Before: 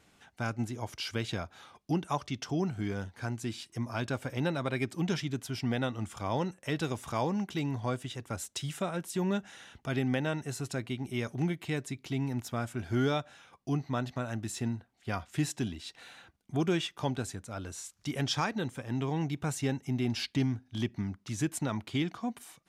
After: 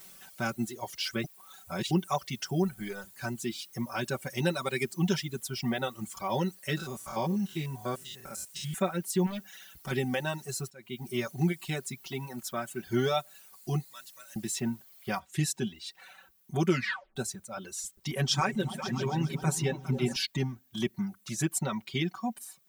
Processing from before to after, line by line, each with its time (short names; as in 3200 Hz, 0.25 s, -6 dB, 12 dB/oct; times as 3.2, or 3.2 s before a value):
1.24–1.91 reverse
2.62–3.04 G.711 law mismatch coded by A
4.26–4.83 bell 9700 Hz +7.5 dB 2.1 oct
6.77–8.74 stepped spectrum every 0.1 s
9.26–9.91 overloaded stage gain 33.5 dB
10.7–11.1 fade in, from -19 dB
12.08–12.87 low shelf 120 Hz -12 dB
13.84–14.36 pre-emphasis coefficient 0.97
15.19 noise floor step -58 dB -69 dB
16.68 tape stop 0.48 s
17.7–20.16 repeats that get brighter 0.136 s, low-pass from 200 Hz, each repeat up 2 oct, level -3 dB
whole clip: reverb removal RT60 1.8 s; high shelf 6700 Hz +6.5 dB; comb 5.3 ms, depth 94%